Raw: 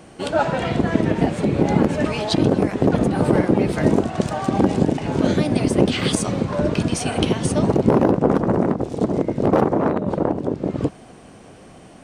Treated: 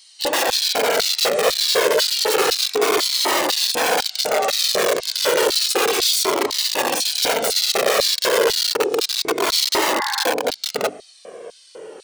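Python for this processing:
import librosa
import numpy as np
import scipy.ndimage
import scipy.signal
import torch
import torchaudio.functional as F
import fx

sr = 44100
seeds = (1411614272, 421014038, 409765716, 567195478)

y = fx.hum_notches(x, sr, base_hz=50, count=6)
y = (np.mod(10.0 ** (18.0 / 20.0) * y + 1.0, 2.0) - 1.0) / 10.0 ** (18.0 / 20.0)
y = fx.filter_lfo_highpass(y, sr, shape='square', hz=2.0, low_hz=440.0, high_hz=4200.0, q=4.2)
y = fx.spec_repair(y, sr, seeds[0], start_s=9.93, length_s=0.28, low_hz=790.0, high_hz=2200.0, source='both')
y = fx.comb_cascade(y, sr, direction='falling', hz=0.31)
y = y * 10.0 ** (7.5 / 20.0)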